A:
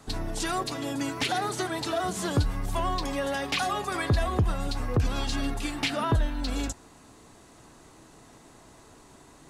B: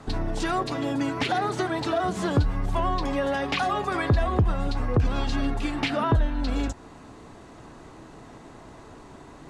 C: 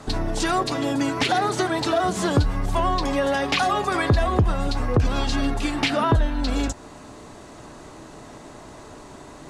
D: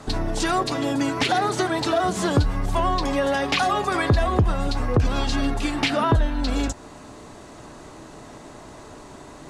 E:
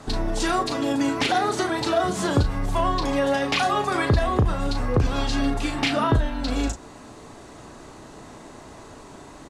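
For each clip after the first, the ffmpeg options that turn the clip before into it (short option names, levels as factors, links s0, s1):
-filter_complex "[0:a]aemphasis=mode=reproduction:type=75fm,asplit=2[s0][s1];[s1]acompressor=threshold=0.0178:ratio=6,volume=1.26[s2];[s0][s2]amix=inputs=2:normalize=0"
-af "bass=f=250:g=-2,treble=f=4000:g=6,aeval=exprs='val(0)+0.00158*sin(2*PI*600*n/s)':c=same,volume=1.58"
-af anull
-filter_complex "[0:a]asplit=2[s0][s1];[s1]adelay=36,volume=0.422[s2];[s0][s2]amix=inputs=2:normalize=0,volume=0.841"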